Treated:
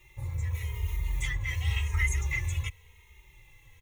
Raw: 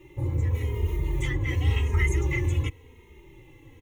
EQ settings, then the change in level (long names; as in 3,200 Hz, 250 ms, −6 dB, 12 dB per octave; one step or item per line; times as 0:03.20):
guitar amp tone stack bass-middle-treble 10-0-10
notch filter 3,000 Hz, Q 14
+4.0 dB